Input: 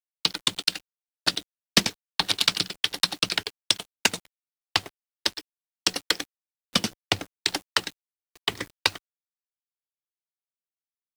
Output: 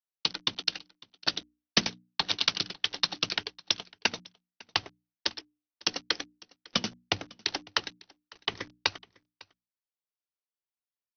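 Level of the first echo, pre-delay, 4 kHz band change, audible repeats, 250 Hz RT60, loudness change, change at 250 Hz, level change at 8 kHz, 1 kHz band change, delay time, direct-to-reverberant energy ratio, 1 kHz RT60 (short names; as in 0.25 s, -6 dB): -24.0 dB, none, -4.5 dB, 1, none, -5.0 dB, -5.5 dB, -9.0 dB, -4.0 dB, 0.552 s, none, none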